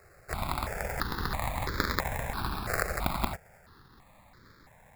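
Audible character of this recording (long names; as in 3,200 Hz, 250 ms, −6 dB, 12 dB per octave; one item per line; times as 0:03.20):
aliases and images of a low sample rate 3,000 Hz, jitter 0%
notches that jump at a steady rate 3 Hz 940–2,700 Hz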